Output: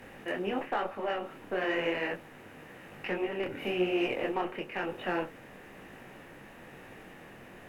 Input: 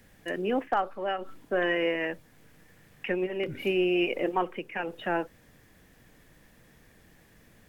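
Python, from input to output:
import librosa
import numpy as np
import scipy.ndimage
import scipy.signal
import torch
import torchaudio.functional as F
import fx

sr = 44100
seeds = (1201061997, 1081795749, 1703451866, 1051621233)

y = fx.bin_compress(x, sr, power=0.6)
y = fx.cheby_harmonics(y, sr, harmonics=(6,), levels_db=(-30,), full_scale_db=-11.5)
y = fx.detune_double(y, sr, cents=35)
y = y * 10.0 ** (-3.0 / 20.0)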